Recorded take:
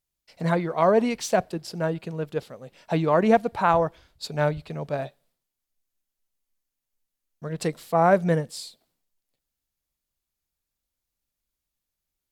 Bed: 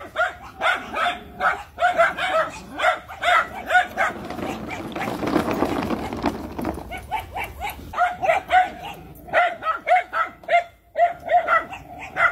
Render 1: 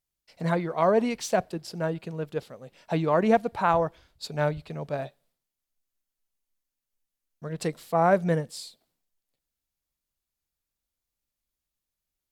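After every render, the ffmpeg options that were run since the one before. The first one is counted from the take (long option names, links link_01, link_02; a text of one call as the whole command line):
ffmpeg -i in.wav -af "volume=-2.5dB" out.wav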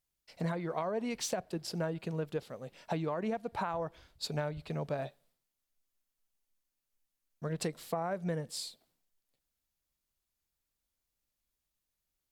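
ffmpeg -i in.wav -af "alimiter=limit=-16.5dB:level=0:latency=1:release=299,acompressor=threshold=-31dB:ratio=10" out.wav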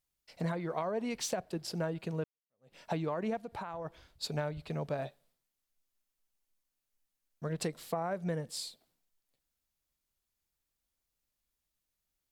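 ffmpeg -i in.wav -filter_complex "[0:a]asplit=3[link_01][link_02][link_03];[link_01]afade=type=out:start_time=3.4:duration=0.02[link_04];[link_02]acompressor=threshold=-39dB:ratio=2.5:attack=3.2:release=140:knee=1:detection=peak,afade=type=in:start_time=3.4:duration=0.02,afade=type=out:start_time=3.84:duration=0.02[link_05];[link_03]afade=type=in:start_time=3.84:duration=0.02[link_06];[link_04][link_05][link_06]amix=inputs=3:normalize=0,asplit=2[link_07][link_08];[link_07]atrim=end=2.24,asetpts=PTS-STARTPTS,afade=type=out:start_time=2.236:duration=0.004:curve=hsin[link_09];[link_08]atrim=start=2.24,asetpts=PTS-STARTPTS,afade=type=in:duration=0.51:curve=exp[link_10];[link_09][link_10]concat=n=2:v=0:a=1" out.wav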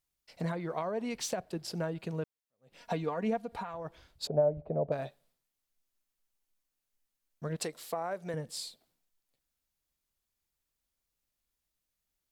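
ffmpeg -i in.wav -filter_complex "[0:a]asettb=1/sr,asplit=3[link_01][link_02][link_03];[link_01]atrim=end=2.804[link_04];[link_02]atrim=start=2.8:end=3.75,asetpts=PTS-STARTPTS,afade=type=in:duration=0.004:curve=qsin,afade=type=out:start_time=0.946:duration=0.004:curve=qsin,aecho=1:1:4.2:0.6,atrim=end_sample=41895[link_05];[link_03]atrim=start=3.746[link_06];[link_04][link_05]acrossfade=duration=0.004:curve1=hsin:curve2=qsin[link_07];[link_07][link_06]acrossfade=duration=0.004:curve1=qsin:curve2=hsin,asettb=1/sr,asplit=3[link_08][link_09][link_10];[link_08]atrim=end=4.274[link_11];[link_09]atrim=start=4.27:end=4.92,asetpts=PTS-STARTPTS,afade=type=in:duration=0.004:curve=qsin,afade=type=out:start_time=0.646:duration=0.004:curve=qsin,lowpass=frequency=610:width_type=q:width=4[link_12];[link_10]atrim=start=4.916[link_13];[link_11][link_12]acrossfade=duration=0.004:curve1=hsin:curve2=qsin[link_14];[link_14][link_13]acrossfade=duration=0.004:curve1=qsin:curve2=hsin,asettb=1/sr,asplit=3[link_15][link_16][link_17];[link_15]atrim=end=7.564[link_18];[link_16]atrim=start=7.56:end=8.34,asetpts=PTS-STARTPTS,afade=type=in:duration=0.004:curve=qsin,afade=type=out:start_time=0.776:duration=0.004:curve=qsin,bass=frequency=250:gain=-11,treble=frequency=4000:gain=3[link_19];[link_17]atrim=start=8.336[link_20];[link_18][link_19]acrossfade=duration=0.004:curve1=hsin:curve2=qsin[link_21];[link_21][link_20]acrossfade=duration=0.004:curve1=qsin:curve2=hsin" out.wav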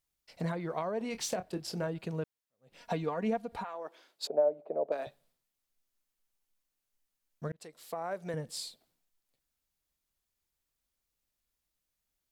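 ffmpeg -i in.wav -filter_complex "[0:a]asettb=1/sr,asplit=3[link_01][link_02][link_03];[link_01]atrim=end=0.984[link_04];[link_02]atrim=start=0.98:end=1.87,asetpts=PTS-STARTPTS,afade=type=in:duration=0.004:curve=qsin,afade=type=out:start_time=0.886:duration=0.004:curve=qsin,asplit=2[link_05][link_06];[link_06]adelay=27,volume=-10dB[link_07];[link_05][link_07]amix=inputs=2:normalize=0,atrim=end_sample=39249[link_08];[link_03]atrim=start=1.866[link_09];[link_04][link_08]acrossfade=duration=0.004:curve1=hsin:curve2=qsin[link_10];[link_10][link_09]acrossfade=duration=0.004:curve1=qsin:curve2=hsin,asettb=1/sr,asplit=3[link_11][link_12][link_13];[link_11]atrim=end=3.644[link_14];[link_12]atrim=start=3.64:end=5.07,asetpts=PTS-STARTPTS,afade=type=in:duration=0.004:curve=qsin,afade=type=out:start_time=1.426:duration=0.004:curve=qsin,highpass=frequency=300:width=0.5412,highpass=frequency=300:width=1.3066[link_15];[link_13]atrim=start=5.066[link_16];[link_14][link_15]acrossfade=duration=0.004:curve1=hsin:curve2=qsin[link_17];[link_17][link_16]acrossfade=duration=0.004:curve1=qsin:curve2=hsin,asplit=2[link_18][link_19];[link_18]atrim=end=7.52,asetpts=PTS-STARTPTS,afade=type=out:start_time=7.516:duration=0.004:curve=hsin[link_20];[link_19]atrim=start=7.52,asetpts=PTS-STARTPTS,afade=type=in:duration=0.62[link_21];[link_20][link_21]concat=n=2:v=0:a=1" out.wav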